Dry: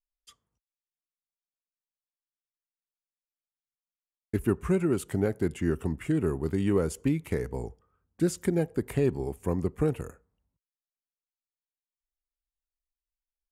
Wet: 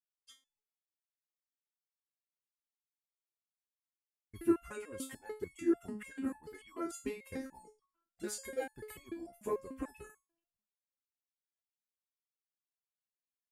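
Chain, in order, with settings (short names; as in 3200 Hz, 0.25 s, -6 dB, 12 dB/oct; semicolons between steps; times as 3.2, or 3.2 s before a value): median-filter separation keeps percussive; stepped resonator 6.8 Hz 210–1100 Hz; gain +9.5 dB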